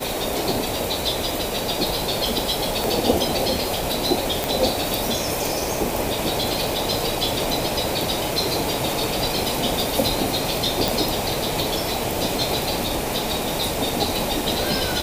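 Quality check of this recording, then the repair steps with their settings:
crackle 41/s -30 dBFS
2.84 pop
4.44 pop
10.88 pop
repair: de-click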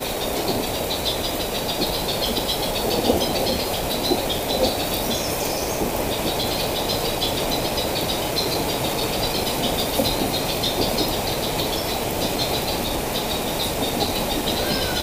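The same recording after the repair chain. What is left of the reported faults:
2.84 pop
10.88 pop

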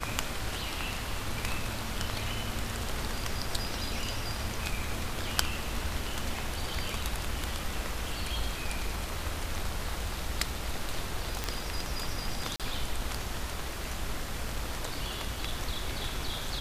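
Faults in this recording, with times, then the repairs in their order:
11.44 pop
12.56–12.6 gap 37 ms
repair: de-click; interpolate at 12.56, 37 ms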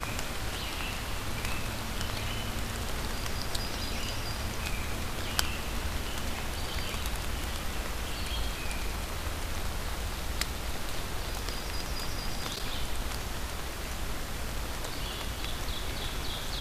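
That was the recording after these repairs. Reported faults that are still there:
none

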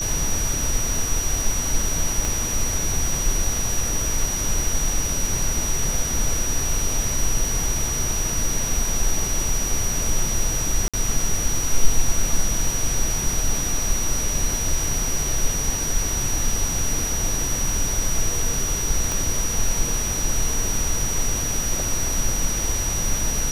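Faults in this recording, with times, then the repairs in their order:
tone 5800 Hz -25 dBFS
2.25 pop
10.88–10.94 gap 56 ms
19.12 pop -9 dBFS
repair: de-click; notch 5800 Hz, Q 30; interpolate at 10.88, 56 ms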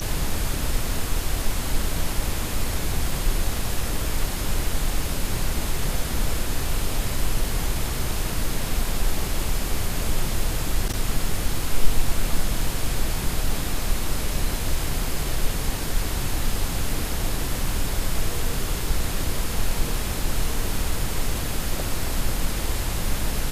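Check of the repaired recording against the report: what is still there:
2.25 pop
19.12 pop

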